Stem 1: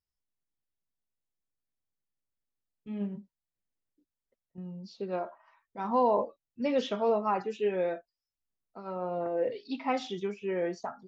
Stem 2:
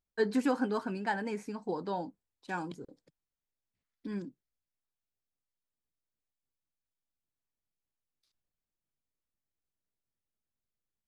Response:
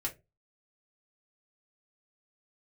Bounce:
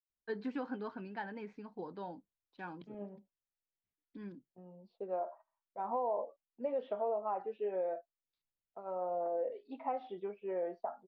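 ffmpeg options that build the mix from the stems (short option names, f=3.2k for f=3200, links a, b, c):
-filter_complex "[0:a]agate=range=-20dB:threshold=-52dB:ratio=16:detection=peak,bandpass=f=660:t=q:w=2.2:csg=0,volume=2dB[a];[1:a]adelay=100,volume=-9dB[b];[a][b]amix=inputs=2:normalize=0,lowpass=f=3.9k:w=0.5412,lowpass=f=3.9k:w=1.3066,acompressor=threshold=-33dB:ratio=4"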